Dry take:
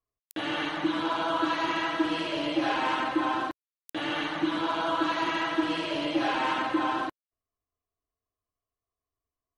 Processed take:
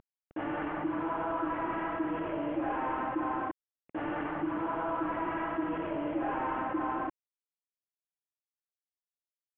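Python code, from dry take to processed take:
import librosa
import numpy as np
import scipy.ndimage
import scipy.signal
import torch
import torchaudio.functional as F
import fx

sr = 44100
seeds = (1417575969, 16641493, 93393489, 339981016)

y = fx.cvsd(x, sr, bps=16000)
y = scipy.signal.sosfilt(scipy.signal.butter(2, 1300.0, 'lowpass', fs=sr, output='sos'), y)
y = fx.env_flatten(y, sr, amount_pct=50)
y = y * 10.0 ** (-6.5 / 20.0)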